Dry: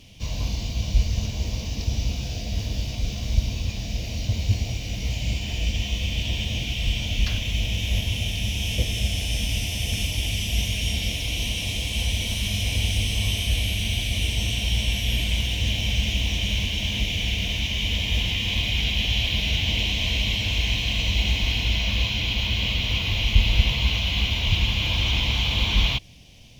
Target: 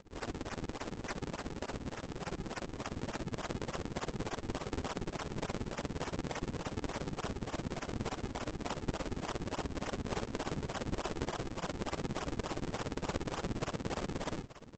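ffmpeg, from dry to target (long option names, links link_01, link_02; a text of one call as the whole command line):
ffmpeg -i in.wav -filter_complex "[0:a]highpass=frequency=69:poles=1,aderivative,acrossover=split=1300|5700[link_01][link_02][link_03];[link_01]acompressor=threshold=-59dB:ratio=4[link_04];[link_02]acompressor=threshold=-42dB:ratio=4[link_05];[link_03]acompressor=threshold=-46dB:ratio=4[link_06];[link_04][link_05][link_06]amix=inputs=3:normalize=0,aresample=16000,acrusher=samples=21:mix=1:aa=0.000001:lfo=1:lforange=33.6:lforate=1.9,aresample=44100,tremolo=f=9.5:d=0.93,atempo=1.8,aeval=exprs='val(0)*sin(2*PI*170*n/s)':channel_layout=same,asplit=2[link_07][link_08];[link_08]aecho=0:1:883:0.158[link_09];[link_07][link_09]amix=inputs=2:normalize=0,volume=11dB" out.wav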